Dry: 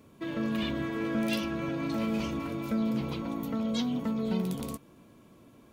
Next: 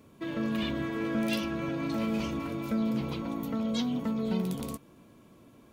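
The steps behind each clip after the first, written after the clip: nothing audible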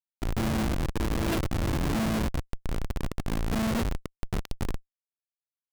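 LFO notch square 0.66 Hz 200–2900 Hz; Schmitt trigger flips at -28.5 dBFS; gain +8 dB

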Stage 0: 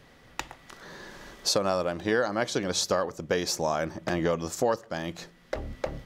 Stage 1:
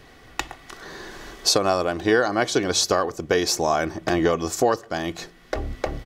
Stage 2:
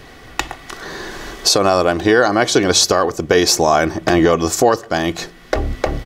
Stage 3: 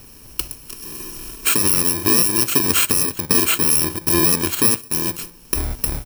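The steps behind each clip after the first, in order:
comb 2.7 ms, depth 41%; gain +6 dB
maximiser +10 dB; gain -1 dB
FFT order left unsorted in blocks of 64 samples; gain -3 dB

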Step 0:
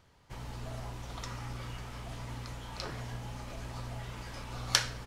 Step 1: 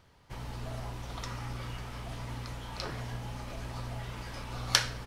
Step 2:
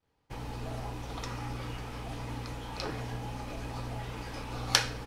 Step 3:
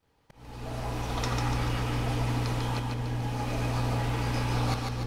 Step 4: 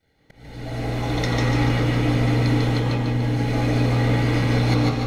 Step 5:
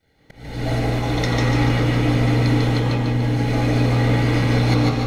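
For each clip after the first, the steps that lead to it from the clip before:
bell 7100 Hz -3.5 dB 0.38 oct; gain +2 dB
small resonant body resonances 300/460/800/2500 Hz, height 8 dB, ringing for 45 ms; expander -50 dBFS
auto swell 0.677 s; split-band echo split 500 Hz, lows 0.475 s, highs 0.146 s, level -3.5 dB; gain +6.5 dB
reverb RT60 0.40 s, pre-delay 0.147 s, DRR 1.5 dB
recorder AGC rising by 10 dB/s; gain +2 dB

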